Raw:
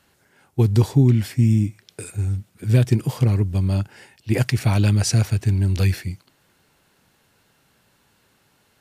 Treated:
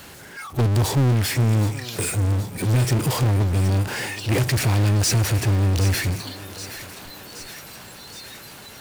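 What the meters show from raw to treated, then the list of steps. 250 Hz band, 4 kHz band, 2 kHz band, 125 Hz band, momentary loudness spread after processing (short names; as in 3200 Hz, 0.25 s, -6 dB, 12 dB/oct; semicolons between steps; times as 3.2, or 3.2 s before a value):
-3.0 dB, +6.0 dB, +5.5 dB, -1.0 dB, 18 LU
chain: spectral noise reduction 25 dB; power-law curve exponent 0.35; thinning echo 0.772 s, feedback 69%, high-pass 320 Hz, level -12 dB; gain -8 dB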